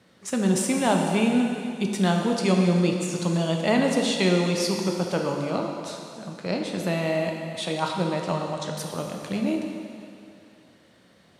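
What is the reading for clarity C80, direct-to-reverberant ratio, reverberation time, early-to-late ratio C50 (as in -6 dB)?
4.0 dB, 1.5 dB, 2.5 s, 2.5 dB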